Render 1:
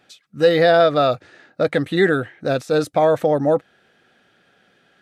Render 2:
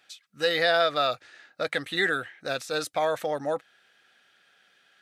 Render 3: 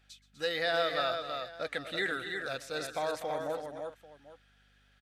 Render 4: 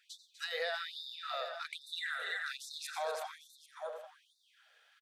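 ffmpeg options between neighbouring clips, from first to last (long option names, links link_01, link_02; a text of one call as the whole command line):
ffmpeg -i in.wav -af "tiltshelf=frequency=730:gain=-9.5,volume=-9dB" out.wav
ffmpeg -i in.wav -af "aecho=1:1:124|247|331|792:0.119|0.282|0.531|0.126,aeval=exprs='val(0)+0.00112*(sin(2*PI*50*n/s)+sin(2*PI*2*50*n/s)/2+sin(2*PI*3*50*n/s)/3+sin(2*PI*4*50*n/s)/4+sin(2*PI*5*50*n/s)/5)':channel_layout=same,volume=-8dB" out.wav
ffmpeg -i in.wav -filter_complex "[0:a]asplit=2[link_01][link_02];[link_02]adelay=89,lowpass=frequency=3000:poles=1,volume=-8dB,asplit=2[link_03][link_04];[link_04]adelay=89,lowpass=frequency=3000:poles=1,volume=0.51,asplit=2[link_05][link_06];[link_06]adelay=89,lowpass=frequency=3000:poles=1,volume=0.51,asplit=2[link_07][link_08];[link_08]adelay=89,lowpass=frequency=3000:poles=1,volume=0.51,asplit=2[link_09][link_10];[link_10]adelay=89,lowpass=frequency=3000:poles=1,volume=0.51,asplit=2[link_11][link_12];[link_12]adelay=89,lowpass=frequency=3000:poles=1,volume=0.51[link_13];[link_01][link_03][link_05][link_07][link_09][link_11][link_13]amix=inputs=7:normalize=0,acompressor=threshold=-35dB:ratio=5,afftfilt=real='re*gte(b*sr/1024,400*pow(3600/400,0.5+0.5*sin(2*PI*1.2*pts/sr)))':imag='im*gte(b*sr/1024,400*pow(3600/400,0.5+0.5*sin(2*PI*1.2*pts/sr)))':win_size=1024:overlap=0.75,volume=2dB" out.wav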